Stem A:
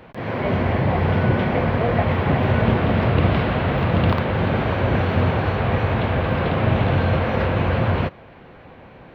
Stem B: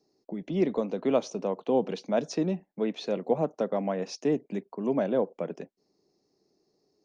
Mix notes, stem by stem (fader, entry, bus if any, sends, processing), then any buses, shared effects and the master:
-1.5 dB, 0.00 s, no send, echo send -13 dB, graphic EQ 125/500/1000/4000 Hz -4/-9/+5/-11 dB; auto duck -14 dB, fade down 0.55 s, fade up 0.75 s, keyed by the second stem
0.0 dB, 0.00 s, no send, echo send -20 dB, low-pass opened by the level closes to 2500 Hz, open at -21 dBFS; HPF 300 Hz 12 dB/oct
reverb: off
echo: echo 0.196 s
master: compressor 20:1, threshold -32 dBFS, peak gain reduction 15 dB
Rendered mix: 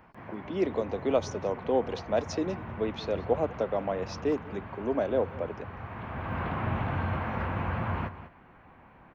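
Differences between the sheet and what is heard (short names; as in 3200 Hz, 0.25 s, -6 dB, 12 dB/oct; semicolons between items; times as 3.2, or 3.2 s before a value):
stem A -1.5 dB -> -9.0 dB; master: missing compressor 20:1, threshold -32 dBFS, peak gain reduction 15 dB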